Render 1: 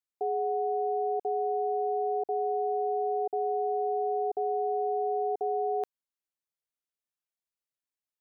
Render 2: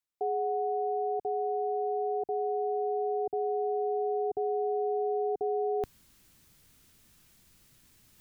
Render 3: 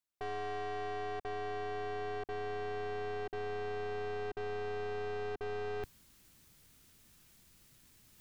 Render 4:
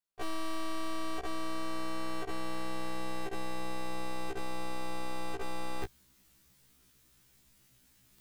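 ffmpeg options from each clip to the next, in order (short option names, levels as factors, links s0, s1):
-af "asubboost=boost=7:cutoff=230,areverse,acompressor=mode=upward:threshold=0.0141:ratio=2.5,areverse"
-af "aeval=exprs='(tanh(89.1*val(0)+0.6)-tanh(0.6))/89.1':c=same,volume=1.19"
-af "aeval=exprs='0.0211*(cos(1*acos(clip(val(0)/0.0211,-1,1)))-cos(1*PI/2))+0.00211*(cos(7*acos(clip(val(0)/0.0211,-1,1)))-cos(7*PI/2))':c=same,afftfilt=real='re*1.73*eq(mod(b,3),0)':imag='im*1.73*eq(mod(b,3),0)':win_size=2048:overlap=0.75,volume=3.35"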